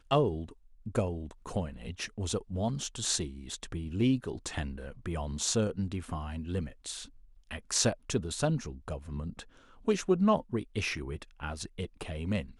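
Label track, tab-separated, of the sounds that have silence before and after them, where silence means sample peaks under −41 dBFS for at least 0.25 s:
0.860000	7.050000	sound
7.510000	9.430000	sound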